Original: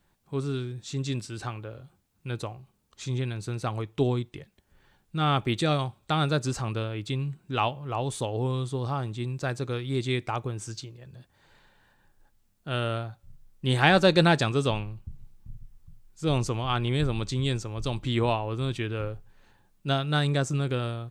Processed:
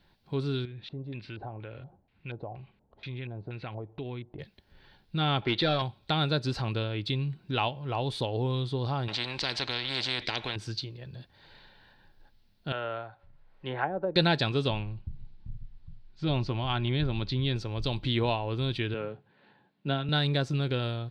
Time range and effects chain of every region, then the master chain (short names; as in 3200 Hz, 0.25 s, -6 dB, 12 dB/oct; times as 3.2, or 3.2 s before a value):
0.65–4.39 compressor 2.5:1, threshold -45 dBFS + LFO low-pass square 2.1 Hz 720–2400 Hz
5.42–5.82 notch 2500 Hz, Q 17 + overdrive pedal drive 15 dB, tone 3300 Hz, clips at -14 dBFS + air absorption 100 m
9.08–10.56 air absorption 96 m + spectral compressor 4:1
12.72–14.16 treble ducked by the level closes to 420 Hz, closed at -15.5 dBFS + three-band isolator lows -16 dB, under 470 Hz, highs -22 dB, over 2100 Hz + upward compressor, threshold -50 dBFS
14.68–17.56 air absorption 140 m + notch 470 Hz, Q 6.3
18.94–20.09 HPF 140 Hz 24 dB/oct + air absorption 340 m + doubler 14 ms -11.5 dB
whole clip: resonant high shelf 5600 Hz -9.5 dB, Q 3; compressor 1.5:1, threshold -38 dBFS; notch 1200 Hz, Q 6.9; gain +3.5 dB